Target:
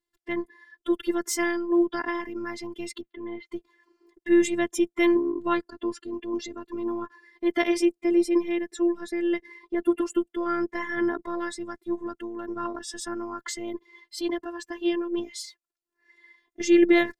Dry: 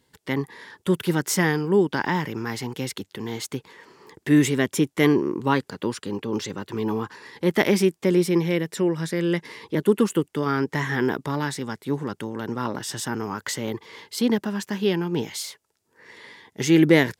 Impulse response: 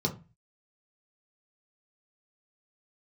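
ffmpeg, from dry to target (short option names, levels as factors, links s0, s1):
-filter_complex "[0:a]asettb=1/sr,asplit=3[s0][s1][s2];[s0]atrim=end=3.014[s3];[s1]atrim=start=3.01:end=3.47,asetpts=PTS-STARTPTS,afade=t=in:d=0.004:c=qsin,afade=t=out:st=0.456:d=0.004:c=qsin,lowpass=f=3100:w=0.5412,lowpass=f=3100:w=1.3066[s4];[s2]atrim=start=3.466[s5];[s3][s4]acrossfade=d=0.004:c1=hsin:c2=qsin[s6];[s6][s5]acrossfade=d=0.004:c1=qsin:c2=hsin,afftdn=nr=18:nf=-36,afftfilt=real='hypot(re,im)*cos(PI*b)':imag='0':win_size=512:overlap=0.75"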